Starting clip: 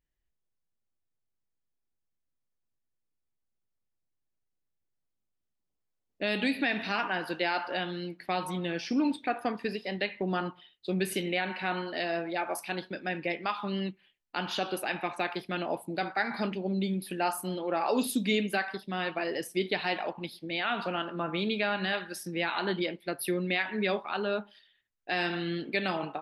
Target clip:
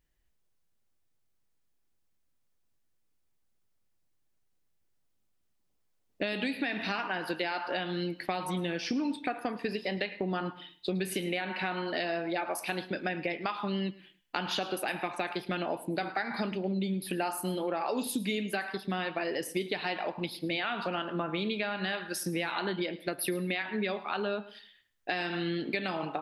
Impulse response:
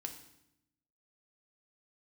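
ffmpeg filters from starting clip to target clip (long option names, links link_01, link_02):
-filter_complex "[0:a]acompressor=threshold=-37dB:ratio=6,asplit=2[link_01][link_02];[1:a]atrim=start_sample=2205,afade=type=out:start_time=0.23:duration=0.01,atrim=end_sample=10584,adelay=108[link_03];[link_02][link_03]afir=irnorm=-1:irlink=0,volume=-15dB[link_04];[link_01][link_04]amix=inputs=2:normalize=0,volume=7.5dB"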